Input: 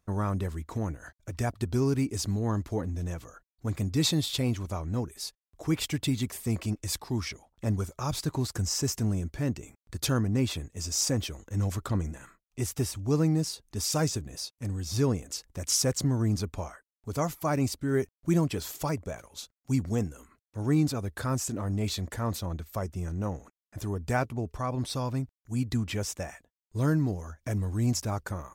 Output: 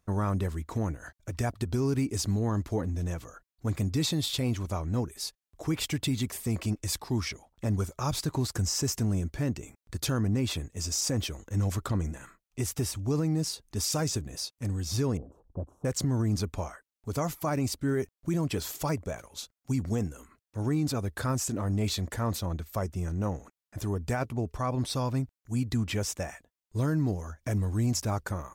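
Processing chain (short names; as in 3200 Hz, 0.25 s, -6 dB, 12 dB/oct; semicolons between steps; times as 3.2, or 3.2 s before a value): limiter -21.5 dBFS, peak gain reduction 7.5 dB; 15.17–15.85 inverse Chebyshev low-pass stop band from 1900 Hz, stop band 40 dB; gain +1.5 dB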